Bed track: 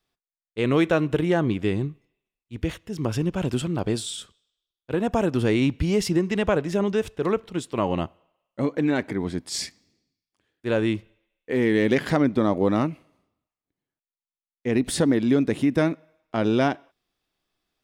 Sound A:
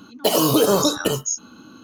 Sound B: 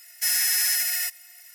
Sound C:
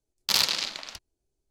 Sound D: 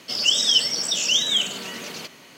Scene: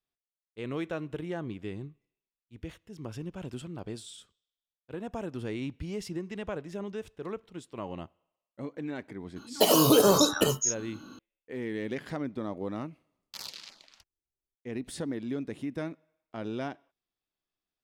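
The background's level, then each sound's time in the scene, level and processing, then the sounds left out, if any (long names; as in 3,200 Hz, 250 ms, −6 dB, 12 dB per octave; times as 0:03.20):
bed track −14 dB
0:09.36: mix in A −3.5 dB
0:13.05: mix in C −17.5 dB + auto-filter notch saw down 3.1 Hz 280–4,200 Hz
not used: B, D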